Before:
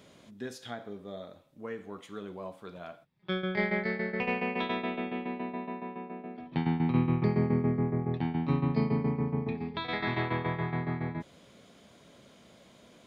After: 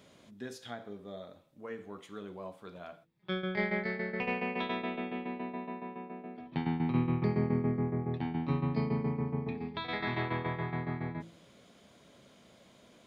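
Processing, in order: de-hum 55.55 Hz, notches 9; trim -2.5 dB

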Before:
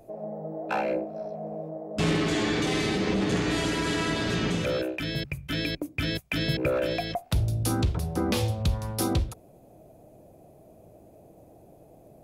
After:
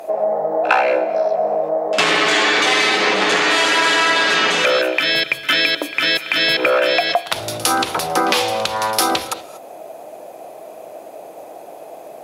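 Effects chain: high-pass 830 Hz 12 dB/octave; treble shelf 5.7 kHz -10 dB; compression 3:1, threshold -41 dBFS, peak gain reduction 10 dB; pre-echo 55 ms -18 dB; on a send at -15 dB: reverberation, pre-delay 3 ms; on the sum: loudness maximiser +27 dB; trim -1 dB; Opus 128 kbps 48 kHz

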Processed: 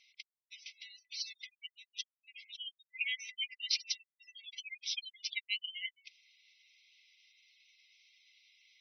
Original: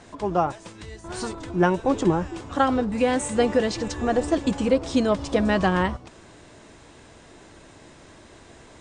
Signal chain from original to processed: spectral gate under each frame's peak -25 dB strong; gate -40 dBFS, range -10 dB; brick-wall FIR band-pass 2–6.1 kHz; trim +2.5 dB

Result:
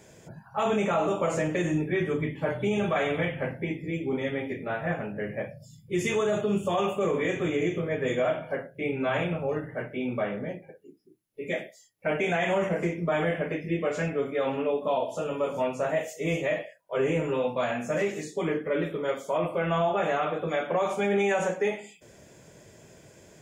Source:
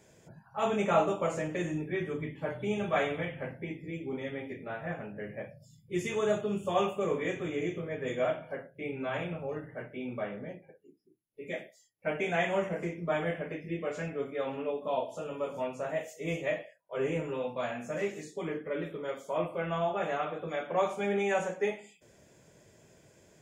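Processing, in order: peak limiter -25 dBFS, peak gain reduction 10 dB; trim +7.5 dB

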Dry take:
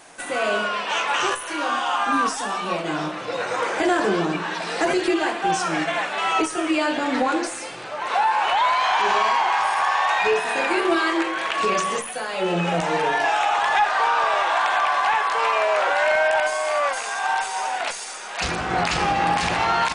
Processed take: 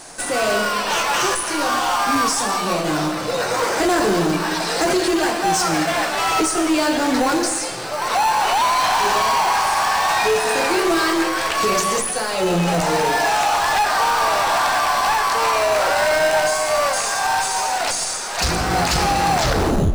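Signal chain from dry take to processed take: tape stop on the ending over 0.65 s; bass shelf 84 Hz +11.5 dB; in parallel at -8 dB: sample-and-hold 13×; on the sum: high-order bell 6.9 kHz +8 dB; saturation -17 dBFS, distortion -12 dB; on a send at -12 dB: reverberation RT60 1.0 s, pre-delay 90 ms; on the sum: trim +3.5 dB

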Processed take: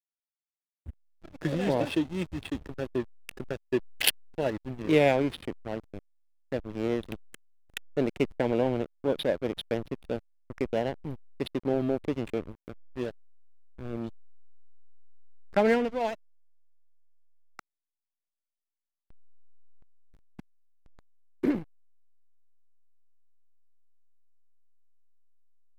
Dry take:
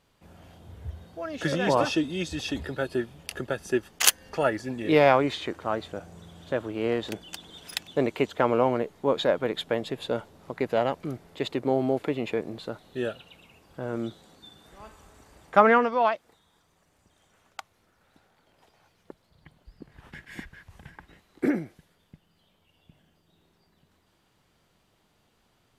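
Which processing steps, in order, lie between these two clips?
touch-sensitive phaser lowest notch 590 Hz, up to 1.2 kHz, full sweep at -26.5 dBFS; hysteresis with a dead band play -27.5 dBFS

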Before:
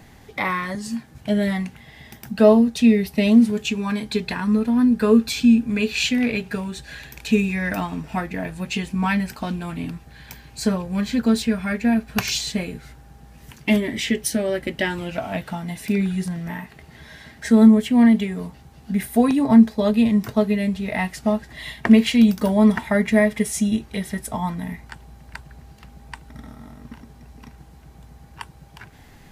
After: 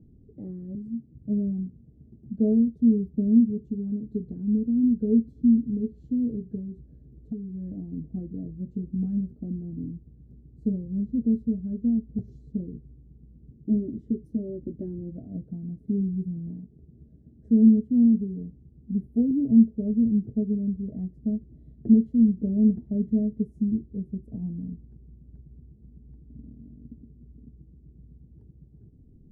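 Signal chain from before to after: inverse Chebyshev low-pass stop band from 950 Hz, stop band 50 dB; 6.57–7.88 s: compression 6:1, threshold -27 dBFS, peak gain reduction 13 dB; trim -4.5 dB

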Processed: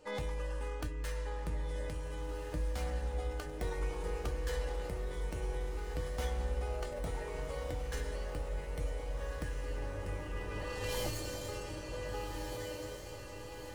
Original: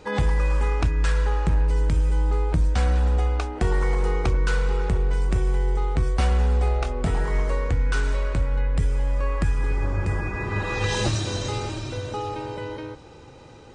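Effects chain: tracing distortion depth 0.06 ms; peaking EQ 490 Hz +10.5 dB 0.36 oct; feedback comb 300 Hz, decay 0.19 s, harmonics all, mix 80%; echo that smears into a reverb 1536 ms, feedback 59%, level -6 dB; formant shift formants +2 st; treble shelf 5.1 kHz +7.5 dB; trim -6.5 dB

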